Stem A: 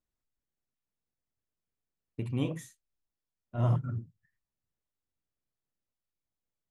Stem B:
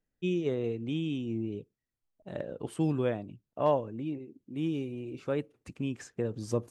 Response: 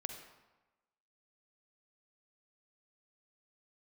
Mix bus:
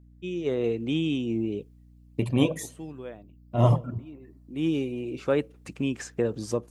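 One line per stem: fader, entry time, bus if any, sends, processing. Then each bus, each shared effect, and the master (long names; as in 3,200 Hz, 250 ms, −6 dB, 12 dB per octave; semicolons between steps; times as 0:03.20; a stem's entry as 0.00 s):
0.0 dB, 0.00 s, send −16.5 dB, reverb reduction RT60 1.1 s; parametric band 1,500 Hz −12.5 dB 0.44 octaves
−3.5 dB, 0.00 s, no send, automatic ducking −17 dB, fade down 0.45 s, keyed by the first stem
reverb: on, RT60 1.1 s, pre-delay 41 ms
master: low-shelf EQ 150 Hz −10 dB; automatic gain control gain up to 12 dB; mains hum 60 Hz, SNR 25 dB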